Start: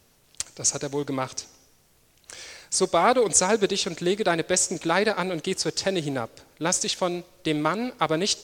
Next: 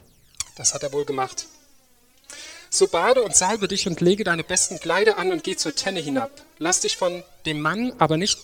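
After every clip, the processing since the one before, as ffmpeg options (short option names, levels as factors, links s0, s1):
-af "aphaser=in_gain=1:out_gain=1:delay=4.2:decay=0.71:speed=0.25:type=triangular"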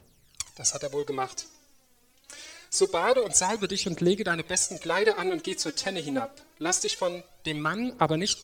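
-af "aecho=1:1:73:0.0668,volume=0.531"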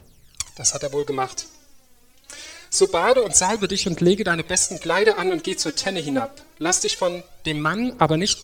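-af "lowshelf=f=86:g=6.5,volume=2"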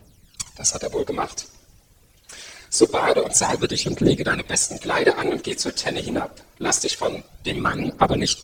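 -af "afftfilt=real='hypot(re,im)*cos(2*PI*random(0))':imag='hypot(re,im)*sin(2*PI*random(1))':win_size=512:overlap=0.75,volume=1.78"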